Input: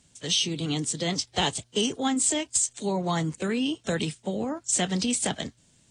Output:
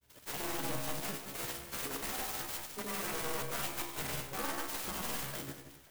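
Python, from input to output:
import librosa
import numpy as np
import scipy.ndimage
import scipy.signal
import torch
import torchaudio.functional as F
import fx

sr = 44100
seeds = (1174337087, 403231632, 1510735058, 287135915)

y = fx.spec_quant(x, sr, step_db=15)
y = scipy.signal.sosfilt(scipy.signal.butter(2, 6000.0, 'lowpass', fs=sr, output='sos'), y)
y = fx.peak_eq(y, sr, hz=210.0, db=-9.5, octaves=0.62)
y = (np.mod(10.0 ** (28.5 / 20.0) * y + 1.0, 2.0) - 1.0) / 10.0 ** (28.5 / 20.0)
y = fx.comb_fb(y, sr, f0_hz=69.0, decay_s=0.75, harmonics='all', damping=0.0, mix_pct=90)
y = fx.granulator(y, sr, seeds[0], grain_ms=100.0, per_s=20.0, spray_ms=100.0, spread_st=0)
y = fx.echo_alternate(y, sr, ms=177, hz=2200.0, feedback_pct=55, wet_db=-10.0)
y = fx.clock_jitter(y, sr, seeds[1], jitter_ms=0.066)
y = F.gain(torch.from_numpy(y), 8.5).numpy()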